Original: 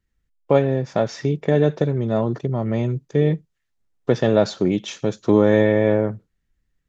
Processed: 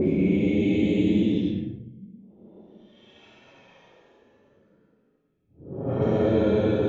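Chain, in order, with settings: Paulstretch 17×, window 0.05 s, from 4.69; low-pass opened by the level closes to 320 Hz, open at -14.5 dBFS; gain -2.5 dB

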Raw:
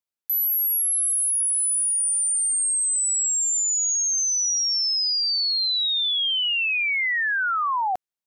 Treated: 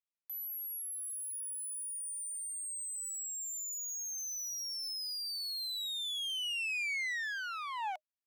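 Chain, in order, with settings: one-sided clip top -31 dBFS, bottom -23 dBFS; rippled Chebyshev high-pass 600 Hz, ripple 6 dB; gain -7.5 dB

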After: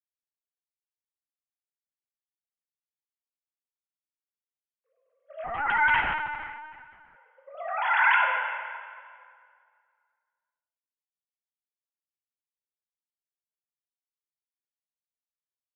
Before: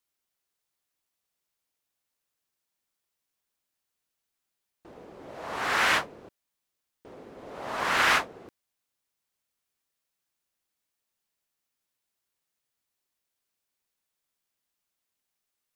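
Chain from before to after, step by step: sine-wave speech; gate -39 dBFS, range -30 dB; outdoor echo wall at 66 m, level -22 dB; plate-style reverb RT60 2.1 s, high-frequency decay 0.8×, DRR 0.5 dB; 5.44–7.16 LPC vocoder at 8 kHz pitch kept

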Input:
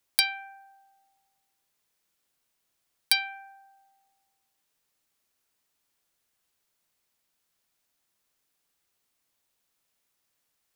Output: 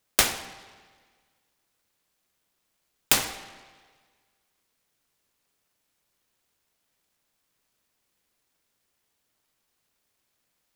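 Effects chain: noise-modulated delay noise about 1300 Hz, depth 0.28 ms; gain +3 dB

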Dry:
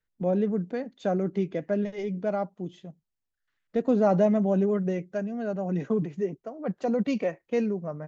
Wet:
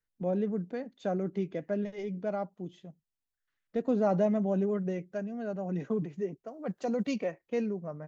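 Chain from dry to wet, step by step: 6.48–7.16 high shelf 4100 Hz +9.5 dB; gain -5 dB

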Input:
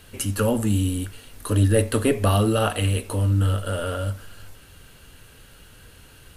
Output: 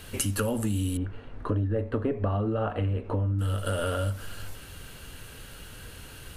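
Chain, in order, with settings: 0.97–3.39 LPF 1300 Hz 12 dB/oct; compressor 6:1, threshold -29 dBFS, peak gain reduction 14.5 dB; gain +4 dB

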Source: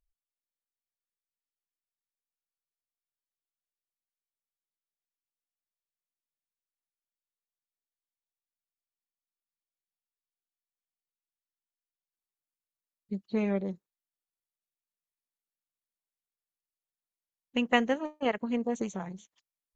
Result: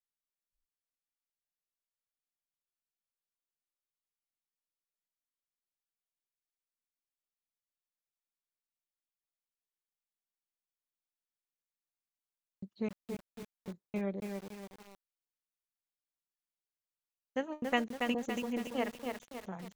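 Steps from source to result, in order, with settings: slices in reverse order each 0.263 s, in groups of 3; lo-fi delay 0.281 s, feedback 55%, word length 7-bit, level -4 dB; gain -6 dB

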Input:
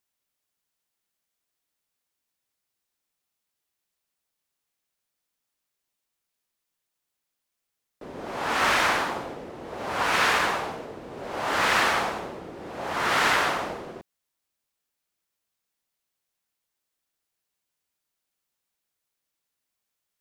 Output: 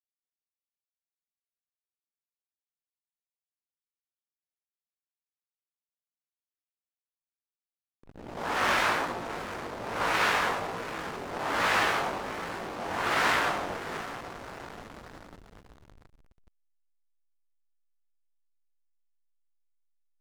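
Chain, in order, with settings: diffused feedback echo 0.701 s, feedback 68%, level -10 dB; chorus 1.2 Hz, delay 17 ms, depth 4.5 ms; backlash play -30.5 dBFS

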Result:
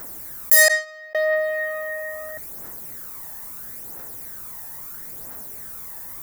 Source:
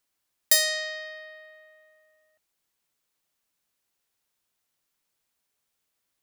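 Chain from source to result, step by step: 0.68–1.15 gate -27 dBFS, range -44 dB; phaser 0.75 Hz, delay 1.2 ms, feedback 50%; EQ curve 600 Hz 0 dB, 1900 Hz -4 dB, 2900 Hz -20 dB, 15000 Hz +5 dB; maximiser +17 dB; fast leveller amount 50%; gain -2 dB

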